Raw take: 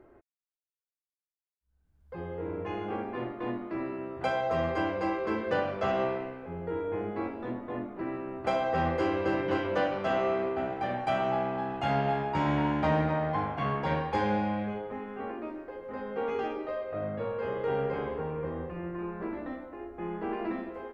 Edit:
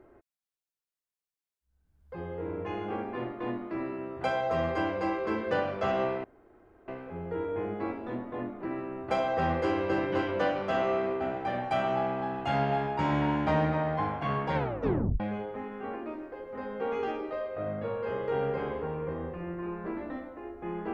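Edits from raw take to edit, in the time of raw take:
6.24 insert room tone 0.64 s
13.91 tape stop 0.65 s

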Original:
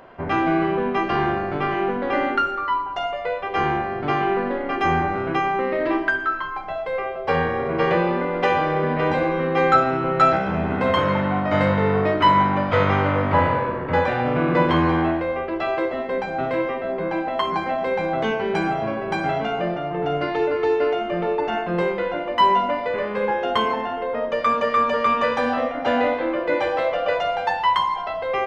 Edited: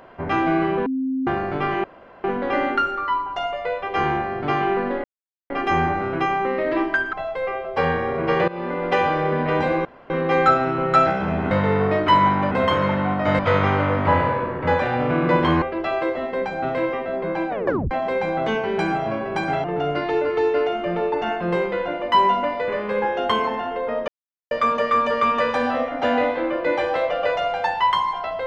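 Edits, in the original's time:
0.86–1.27 bleep 263 Hz -20.5 dBFS
1.84 insert room tone 0.40 s
4.64 insert silence 0.46 s
6.27–6.64 cut
7.99–8.45 fade in equal-power, from -19.5 dB
9.36 insert room tone 0.25 s
10.77–11.65 move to 12.65
14.88–15.38 cut
17.25 tape stop 0.42 s
19.4–19.9 cut
24.34 insert silence 0.43 s

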